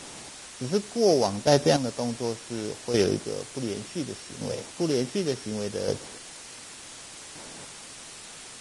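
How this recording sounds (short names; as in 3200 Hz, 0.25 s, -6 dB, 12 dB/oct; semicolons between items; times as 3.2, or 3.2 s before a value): a buzz of ramps at a fixed pitch in blocks of 8 samples; chopped level 0.68 Hz, depth 65%, duty 20%; a quantiser's noise floor 8-bit, dither triangular; Vorbis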